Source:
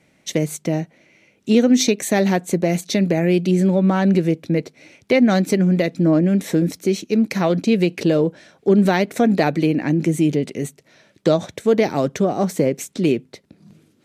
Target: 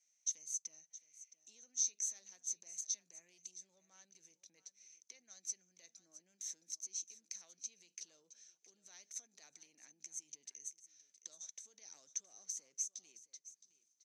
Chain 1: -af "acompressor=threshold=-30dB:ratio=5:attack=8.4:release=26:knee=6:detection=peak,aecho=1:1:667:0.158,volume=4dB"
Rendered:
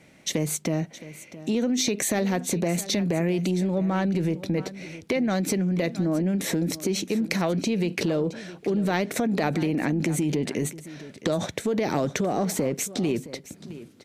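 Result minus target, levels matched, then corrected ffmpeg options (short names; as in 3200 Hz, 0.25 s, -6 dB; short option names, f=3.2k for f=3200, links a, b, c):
8000 Hz band -10.5 dB
-af "acompressor=threshold=-30dB:ratio=5:attack=8.4:release=26:knee=6:detection=peak,bandpass=f=6.2k:t=q:w=18:csg=0,aecho=1:1:667:0.158,volume=4dB"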